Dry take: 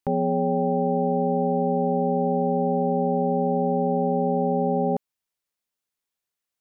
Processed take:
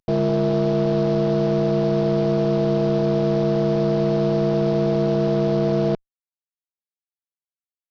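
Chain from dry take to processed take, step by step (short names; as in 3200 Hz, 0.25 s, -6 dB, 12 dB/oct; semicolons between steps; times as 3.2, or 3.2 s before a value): CVSD 32 kbps; tube stage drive 18 dB, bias 0.25; wide varispeed 0.835×; gain +5.5 dB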